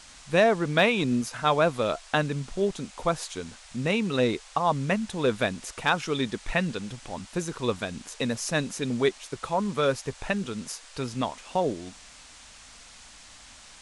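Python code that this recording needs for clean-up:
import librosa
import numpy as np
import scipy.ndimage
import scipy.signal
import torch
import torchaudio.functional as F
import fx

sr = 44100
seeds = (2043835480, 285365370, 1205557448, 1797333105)

y = fx.fix_declip(x, sr, threshold_db=-10.5)
y = fx.noise_reduce(y, sr, print_start_s=12.09, print_end_s=12.59, reduce_db=22.0)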